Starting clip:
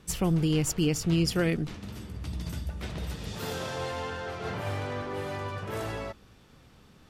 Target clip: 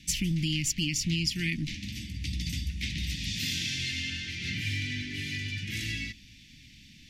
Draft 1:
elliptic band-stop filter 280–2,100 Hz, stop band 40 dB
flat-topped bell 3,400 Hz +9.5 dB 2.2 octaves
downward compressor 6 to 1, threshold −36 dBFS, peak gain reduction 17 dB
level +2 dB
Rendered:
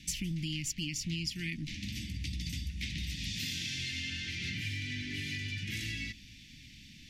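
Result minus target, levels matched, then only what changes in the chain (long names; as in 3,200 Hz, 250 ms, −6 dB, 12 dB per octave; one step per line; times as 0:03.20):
downward compressor: peak gain reduction +7 dB
change: downward compressor 6 to 1, threshold −27.5 dBFS, peak gain reduction 10 dB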